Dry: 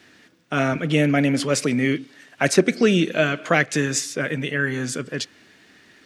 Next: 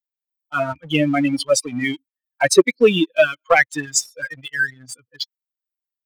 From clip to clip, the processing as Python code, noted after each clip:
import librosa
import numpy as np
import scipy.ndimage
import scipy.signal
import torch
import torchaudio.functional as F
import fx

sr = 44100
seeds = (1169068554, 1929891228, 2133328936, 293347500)

y = fx.bin_expand(x, sr, power=3.0)
y = fx.low_shelf_res(y, sr, hz=290.0, db=-7.5, q=1.5)
y = fx.leveller(y, sr, passes=1)
y = y * librosa.db_to_amplitude(5.5)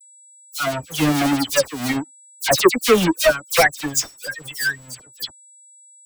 y = fx.halfwave_hold(x, sr)
y = y + 10.0 ** (-42.0 / 20.0) * np.sin(2.0 * np.pi * 7800.0 * np.arange(len(y)) / sr)
y = fx.dispersion(y, sr, late='lows', ms=77.0, hz=2700.0)
y = y * librosa.db_to_amplitude(-4.0)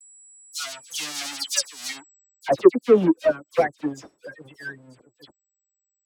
y = fx.filter_sweep_bandpass(x, sr, from_hz=5700.0, to_hz=340.0, start_s=1.94, end_s=2.56, q=1.2)
y = y * librosa.db_to_amplitude(1.5)